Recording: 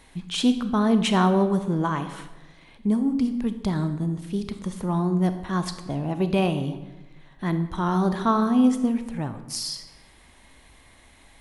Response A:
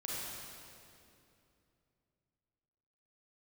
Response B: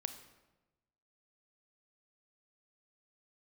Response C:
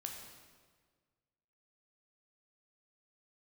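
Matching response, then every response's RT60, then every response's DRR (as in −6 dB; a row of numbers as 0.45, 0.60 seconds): B; 2.7, 1.1, 1.6 seconds; −6.5, 9.0, 1.0 decibels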